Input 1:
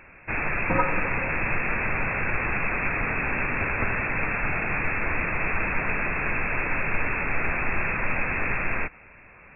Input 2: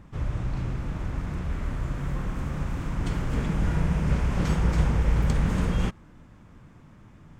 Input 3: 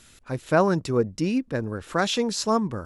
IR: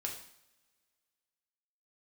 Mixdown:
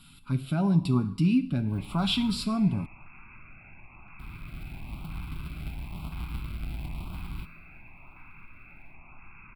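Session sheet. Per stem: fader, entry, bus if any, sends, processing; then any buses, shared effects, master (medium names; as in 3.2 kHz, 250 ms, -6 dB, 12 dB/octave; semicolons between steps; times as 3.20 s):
-9.5 dB, 1.50 s, no send, compression 3:1, threshold -37 dBFS, peak gain reduction 15 dB
-12.5 dB, 1.55 s, muted 2.44–4.19 s, no send, square wave that keeps the level; level rider gain up to 6 dB; feedback comb 160 Hz, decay 0.98 s, harmonics odd, mix 70%
-3.0 dB, 0.00 s, send -4 dB, peaking EQ 190 Hz +12 dB 0.61 oct; comb 7.2 ms, depth 45%; peak limiter -13.5 dBFS, peak gain reduction 9 dB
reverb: on, pre-delay 3 ms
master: static phaser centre 1.8 kHz, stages 6; LFO notch saw up 0.98 Hz 490–1900 Hz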